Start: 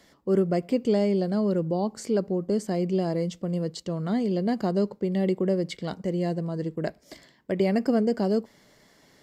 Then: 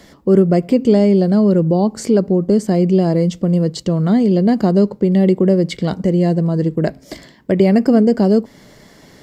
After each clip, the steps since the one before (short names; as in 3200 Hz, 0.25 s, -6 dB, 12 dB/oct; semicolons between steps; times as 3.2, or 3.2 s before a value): low shelf 370 Hz +7 dB; in parallel at +0.5 dB: compressor, threshold -28 dBFS, peak gain reduction 13.5 dB; on the sum: de-hum 133.8 Hz, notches 2; gain +5 dB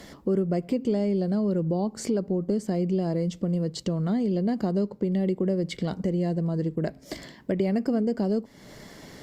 compressor 2:1, threshold -31 dBFS, peak gain reduction 13 dB; gain -1 dB; Opus 64 kbps 48000 Hz